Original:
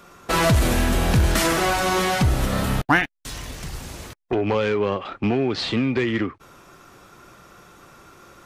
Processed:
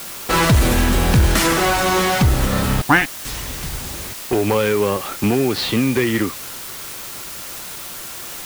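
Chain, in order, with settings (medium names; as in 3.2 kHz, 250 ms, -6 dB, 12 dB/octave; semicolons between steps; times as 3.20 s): band-stop 670 Hz, Q 13; word length cut 6-bit, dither triangular; trim +4 dB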